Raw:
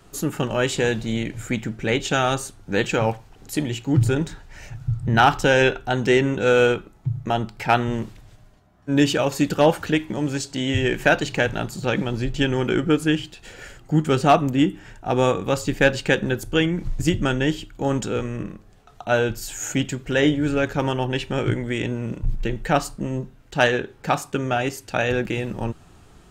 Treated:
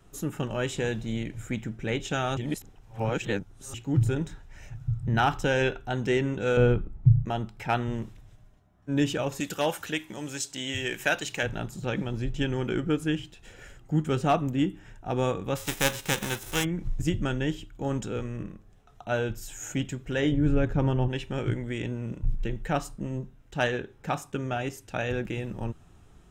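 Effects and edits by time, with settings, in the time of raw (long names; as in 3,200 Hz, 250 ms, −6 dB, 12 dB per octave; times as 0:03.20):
0:02.37–0:03.74: reverse
0:06.57–0:07.25: RIAA equalisation playback
0:09.40–0:11.43: spectral tilt +3 dB per octave
0:15.55–0:16.63: spectral envelope flattened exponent 0.3
0:20.32–0:21.08: spectral tilt −2.5 dB per octave
whole clip: low-shelf EQ 180 Hz +6 dB; notch filter 4,500 Hz, Q 7.7; level −9 dB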